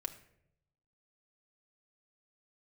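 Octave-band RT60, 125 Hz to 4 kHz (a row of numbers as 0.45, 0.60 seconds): 1.2, 0.90, 0.90, 0.60, 0.65, 0.45 seconds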